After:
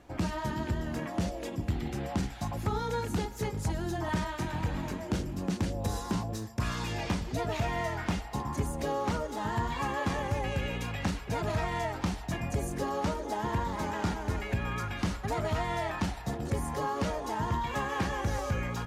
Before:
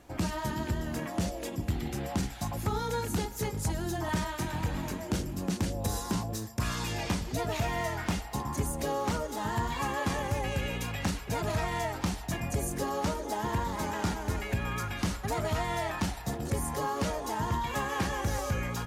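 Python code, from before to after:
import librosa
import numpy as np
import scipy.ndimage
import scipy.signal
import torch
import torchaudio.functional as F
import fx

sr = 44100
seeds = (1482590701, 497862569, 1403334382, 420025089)

y = fx.high_shelf(x, sr, hz=7000.0, db=-11.0)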